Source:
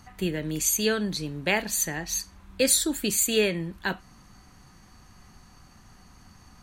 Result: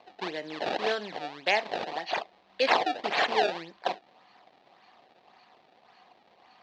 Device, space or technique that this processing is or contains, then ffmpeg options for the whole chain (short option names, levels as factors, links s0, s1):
circuit-bent sampling toy: -af "acrusher=samples=24:mix=1:aa=0.000001:lfo=1:lforange=38.4:lforate=1.8,highpass=530,equalizer=f=730:t=q:w=4:g=7,equalizer=f=1400:t=q:w=4:g=-6,equalizer=f=4100:t=q:w=4:g=4,lowpass=f=4400:w=0.5412,lowpass=f=4400:w=1.3066"